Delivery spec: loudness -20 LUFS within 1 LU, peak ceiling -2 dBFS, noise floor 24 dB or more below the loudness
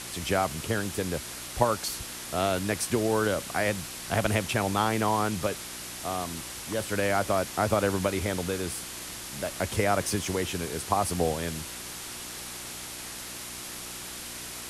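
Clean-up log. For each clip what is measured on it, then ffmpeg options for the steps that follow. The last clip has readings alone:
hum 60 Hz; harmonics up to 360 Hz; hum level -48 dBFS; noise floor -40 dBFS; noise floor target -54 dBFS; loudness -29.5 LUFS; peak -6.0 dBFS; loudness target -20.0 LUFS
-> -af "bandreject=f=60:t=h:w=4,bandreject=f=120:t=h:w=4,bandreject=f=180:t=h:w=4,bandreject=f=240:t=h:w=4,bandreject=f=300:t=h:w=4,bandreject=f=360:t=h:w=4"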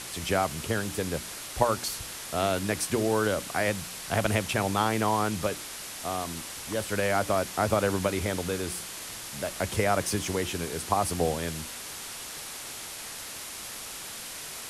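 hum none; noise floor -40 dBFS; noise floor target -54 dBFS
-> -af "afftdn=nr=14:nf=-40"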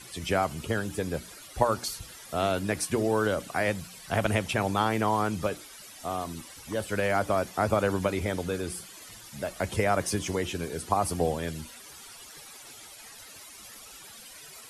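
noise floor -48 dBFS; noise floor target -53 dBFS
-> -af "afftdn=nr=6:nf=-48"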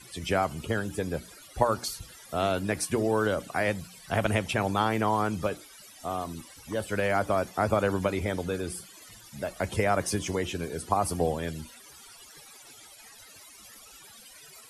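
noise floor -51 dBFS; noise floor target -53 dBFS
-> -af "afftdn=nr=6:nf=-51"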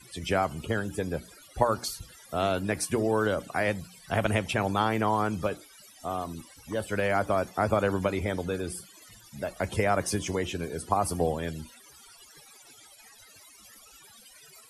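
noise floor -54 dBFS; loudness -29.0 LUFS; peak -6.5 dBFS; loudness target -20.0 LUFS
-> -af "volume=9dB,alimiter=limit=-2dB:level=0:latency=1"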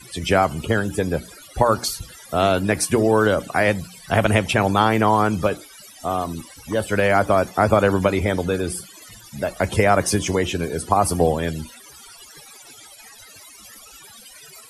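loudness -20.5 LUFS; peak -2.0 dBFS; noise floor -45 dBFS

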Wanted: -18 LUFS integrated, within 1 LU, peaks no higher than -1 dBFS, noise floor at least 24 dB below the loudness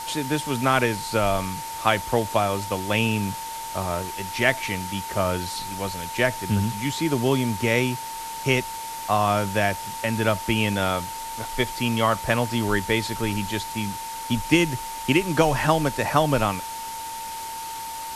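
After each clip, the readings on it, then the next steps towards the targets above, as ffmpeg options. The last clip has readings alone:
steady tone 900 Hz; tone level -32 dBFS; noise floor -34 dBFS; noise floor target -49 dBFS; loudness -24.5 LUFS; peak -3.0 dBFS; loudness target -18.0 LUFS
-> -af "bandreject=f=900:w=30"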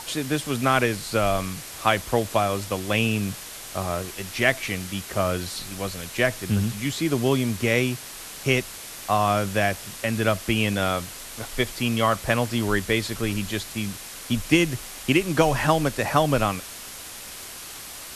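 steady tone none; noise floor -39 dBFS; noise floor target -49 dBFS
-> -af "afftdn=nr=10:nf=-39"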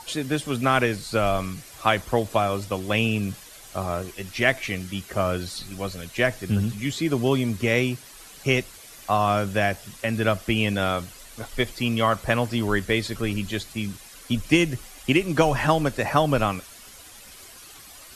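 noise floor -46 dBFS; noise floor target -49 dBFS
-> -af "afftdn=nr=6:nf=-46"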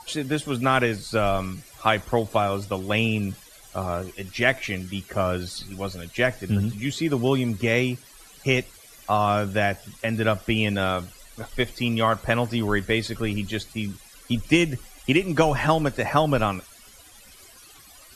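noise floor -49 dBFS; loudness -24.5 LUFS; peak -3.0 dBFS; loudness target -18.0 LUFS
-> -af "volume=6.5dB,alimiter=limit=-1dB:level=0:latency=1"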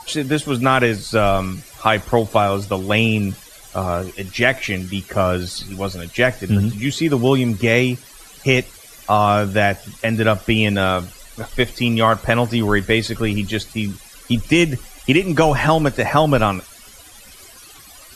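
loudness -18.5 LUFS; peak -1.0 dBFS; noise floor -43 dBFS

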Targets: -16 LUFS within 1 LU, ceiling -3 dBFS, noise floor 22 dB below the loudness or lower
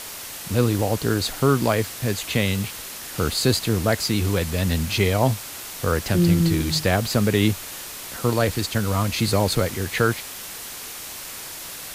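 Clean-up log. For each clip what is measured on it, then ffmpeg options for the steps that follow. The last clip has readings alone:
noise floor -36 dBFS; noise floor target -45 dBFS; loudness -23.0 LUFS; peak -6.5 dBFS; loudness target -16.0 LUFS
-> -af "afftdn=nr=9:nf=-36"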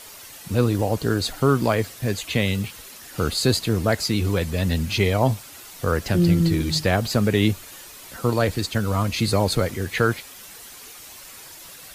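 noise floor -42 dBFS; noise floor target -45 dBFS
-> -af "afftdn=nr=6:nf=-42"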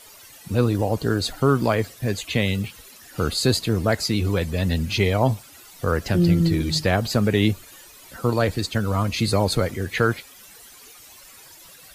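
noise floor -47 dBFS; loudness -22.5 LUFS; peak -7.0 dBFS; loudness target -16.0 LUFS
-> -af "volume=6.5dB,alimiter=limit=-3dB:level=0:latency=1"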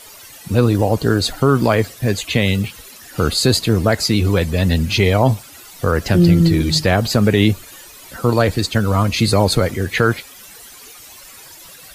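loudness -16.5 LUFS; peak -3.0 dBFS; noise floor -40 dBFS

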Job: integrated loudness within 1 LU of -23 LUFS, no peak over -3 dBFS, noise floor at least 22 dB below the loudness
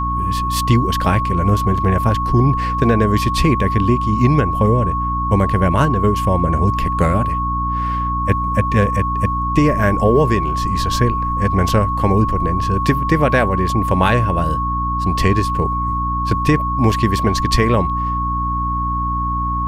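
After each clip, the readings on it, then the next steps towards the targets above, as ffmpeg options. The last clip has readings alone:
hum 60 Hz; harmonics up to 300 Hz; hum level -20 dBFS; steady tone 1100 Hz; tone level -19 dBFS; loudness -17.0 LUFS; peak -1.0 dBFS; loudness target -23.0 LUFS
-> -af "bandreject=f=60:t=h:w=4,bandreject=f=120:t=h:w=4,bandreject=f=180:t=h:w=4,bandreject=f=240:t=h:w=4,bandreject=f=300:t=h:w=4"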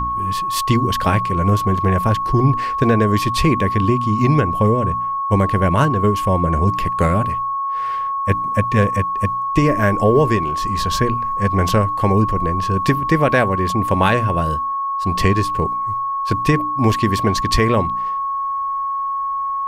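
hum none; steady tone 1100 Hz; tone level -19 dBFS
-> -af "bandreject=f=1.1k:w=30"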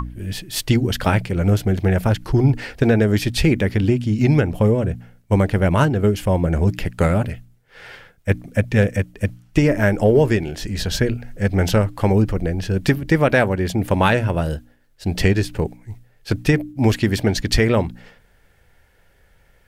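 steady tone none; loudness -19.5 LUFS; peak -1.5 dBFS; loudness target -23.0 LUFS
-> -af "volume=-3.5dB"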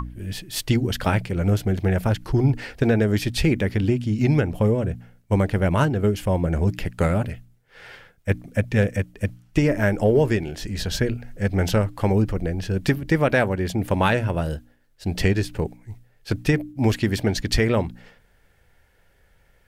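loudness -23.0 LUFS; peak -5.0 dBFS; noise floor -60 dBFS

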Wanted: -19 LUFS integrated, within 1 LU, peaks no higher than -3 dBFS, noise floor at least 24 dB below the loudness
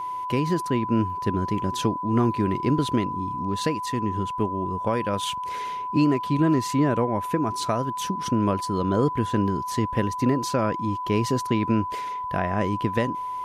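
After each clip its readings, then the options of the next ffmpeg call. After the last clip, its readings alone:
steady tone 1000 Hz; tone level -28 dBFS; loudness -25.0 LUFS; peak -10.5 dBFS; loudness target -19.0 LUFS
-> -af "bandreject=f=1k:w=30"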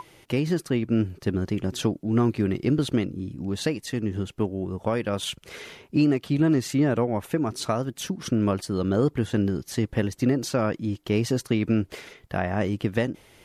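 steady tone none; loudness -26.0 LUFS; peak -11.5 dBFS; loudness target -19.0 LUFS
-> -af "volume=7dB"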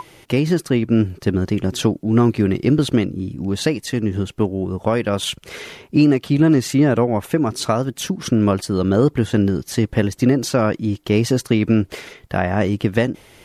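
loudness -19.0 LUFS; peak -4.5 dBFS; noise floor -50 dBFS

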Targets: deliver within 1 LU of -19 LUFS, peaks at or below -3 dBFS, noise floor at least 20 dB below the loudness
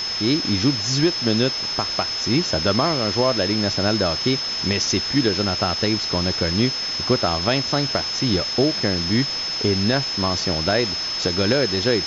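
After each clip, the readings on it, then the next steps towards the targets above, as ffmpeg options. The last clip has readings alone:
steady tone 5200 Hz; tone level -24 dBFS; noise floor -26 dBFS; noise floor target -40 dBFS; loudness -20.0 LUFS; peak -6.0 dBFS; loudness target -19.0 LUFS
-> -af "bandreject=f=5.2k:w=30"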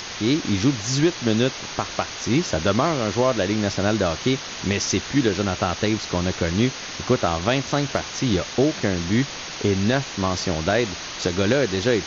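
steady tone none; noise floor -34 dBFS; noise floor target -43 dBFS
-> -af "afftdn=nr=9:nf=-34"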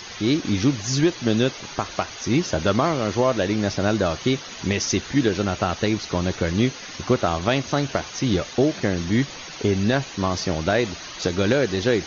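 noise floor -37 dBFS; noise floor target -43 dBFS
-> -af "afftdn=nr=6:nf=-37"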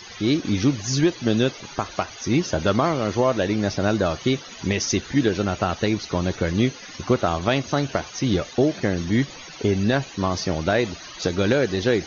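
noise floor -40 dBFS; noise floor target -43 dBFS
-> -af "afftdn=nr=6:nf=-40"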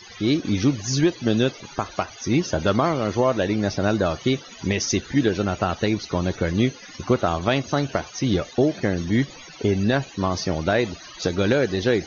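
noise floor -43 dBFS; loudness -23.0 LUFS; peak -7.5 dBFS; loudness target -19.0 LUFS
-> -af "volume=4dB"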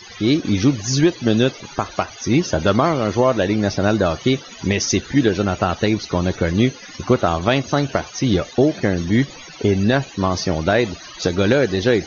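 loudness -19.0 LUFS; peak -3.5 dBFS; noise floor -39 dBFS

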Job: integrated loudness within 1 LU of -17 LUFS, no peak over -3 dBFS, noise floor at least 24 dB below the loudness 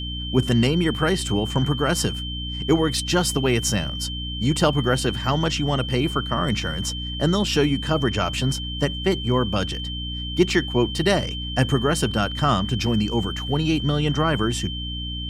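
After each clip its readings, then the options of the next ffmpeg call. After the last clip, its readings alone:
hum 60 Hz; harmonics up to 300 Hz; hum level -29 dBFS; steady tone 3100 Hz; tone level -31 dBFS; loudness -22.5 LUFS; peak -4.5 dBFS; loudness target -17.0 LUFS
-> -af "bandreject=f=60:t=h:w=4,bandreject=f=120:t=h:w=4,bandreject=f=180:t=h:w=4,bandreject=f=240:t=h:w=4,bandreject=f=300:t=h:w=4"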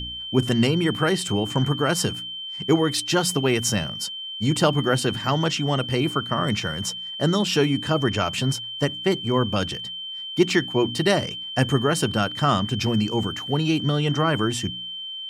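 hum none; steady tone 3100 Hz; tone level -31 dBFS
-> -af "bandreject=f=3.1k:w=30"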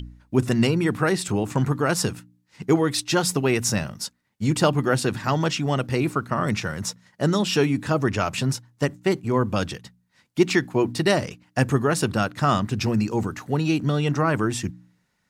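steady tone none; loudness -23.5 LUFS; peak -5.0 dBFS; loudness target -17.0 LUFS
-> -af "volume=6.5dB,alimiter=limit=-3dB:level=0:latency=1"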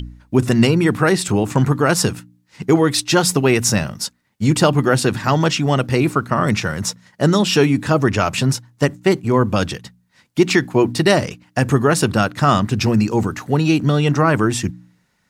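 loudness -17.0 LUFS; peak -3.0 dBFS; noise floor -63 dBFS

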